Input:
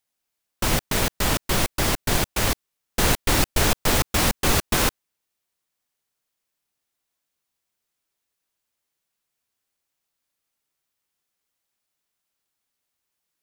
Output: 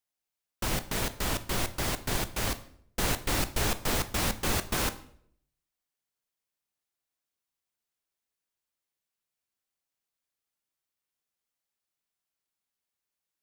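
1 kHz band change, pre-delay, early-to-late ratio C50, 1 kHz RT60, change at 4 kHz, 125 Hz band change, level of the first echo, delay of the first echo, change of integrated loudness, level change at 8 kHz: −8.0 dB, 12 ms, 15.5 dB, 0.60 s, −8.5 dB, −8.0 dB, no echo audible, no echo audible, −8.0 dB, −8.0 dB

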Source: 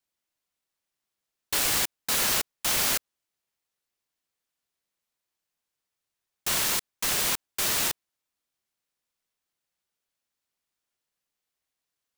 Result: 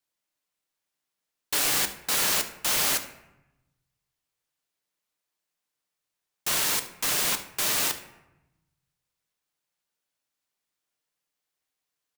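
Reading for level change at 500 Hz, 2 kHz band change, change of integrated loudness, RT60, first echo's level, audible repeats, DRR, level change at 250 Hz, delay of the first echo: +0.5 dB, +0.5 dB, +0.5 dB, 0.95 s, −17.0 dB, 1, 7.0 dB, 0.0 dB, 71 ms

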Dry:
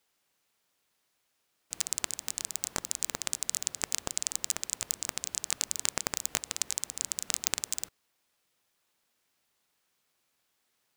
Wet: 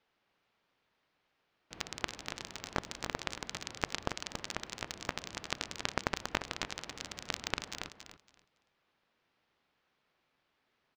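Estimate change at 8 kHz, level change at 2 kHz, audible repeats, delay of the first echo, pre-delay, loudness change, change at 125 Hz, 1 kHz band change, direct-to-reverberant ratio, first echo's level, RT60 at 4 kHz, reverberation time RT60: −16.0 dB, +2.0 dB, 2, 279 ms, no reverb audible, −7.5 dB, +4.5 dB, +3.5 dB, no reverb audible, −8.0 dB, no reverb audible, no reverb audible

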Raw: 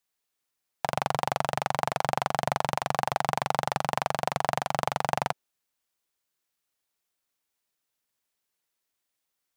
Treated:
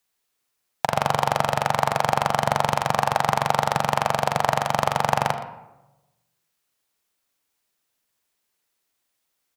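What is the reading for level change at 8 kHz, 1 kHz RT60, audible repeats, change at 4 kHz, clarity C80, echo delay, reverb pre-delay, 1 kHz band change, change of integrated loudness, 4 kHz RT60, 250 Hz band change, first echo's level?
+6.0 dB, 0.95 s, 1, +6.5 dB, 11.0 dB, 120 ms, 35 ms, +6.5 dB, +6.5 dB, 0.55 s, +6.5 dB, −15.5 dB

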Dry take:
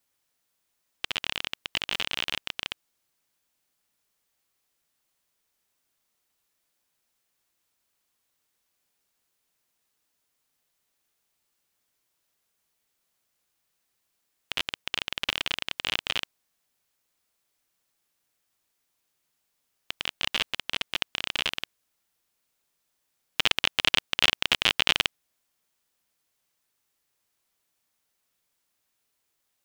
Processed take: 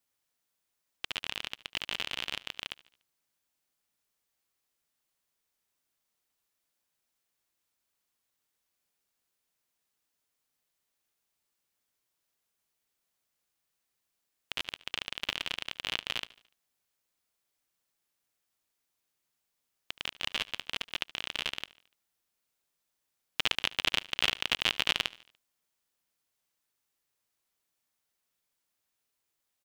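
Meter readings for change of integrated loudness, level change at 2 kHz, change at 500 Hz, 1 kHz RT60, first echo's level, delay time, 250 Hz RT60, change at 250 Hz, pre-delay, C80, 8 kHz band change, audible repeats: −5.5 dB, −5.5 dB, −5.5 dB, no reverb audible, −20.5 dB, 73 ms, no reverb audible, −5.5 dB, no reverb audible, no reverb audible, −5.5 dB, 3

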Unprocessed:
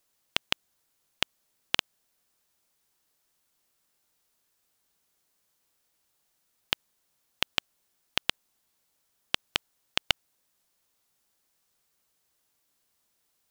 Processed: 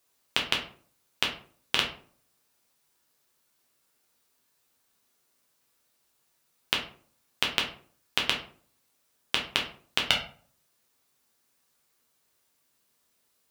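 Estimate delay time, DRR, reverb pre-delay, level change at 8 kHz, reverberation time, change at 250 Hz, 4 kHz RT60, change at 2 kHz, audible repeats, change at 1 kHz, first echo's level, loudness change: no echo audible, −1.0 dB, 6 ms, +2.0 dB, 0.50 s, +4.5 dB, 0.30 s, +3.5 dB, no echo audible, +3.5 dB, no echo audible, +2.5 dB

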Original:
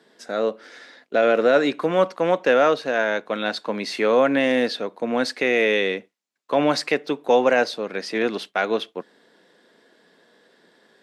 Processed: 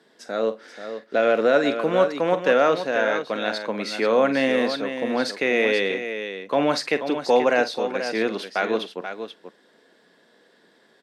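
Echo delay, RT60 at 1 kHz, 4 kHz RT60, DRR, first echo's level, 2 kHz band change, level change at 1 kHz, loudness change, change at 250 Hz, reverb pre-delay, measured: 45 ms, no reverb audible, no reverb audible, no reverb audible, −13.0 dB, −1.0 dB, −0.5 dB, −1.0 dB, −1.0 dB, no reverb audible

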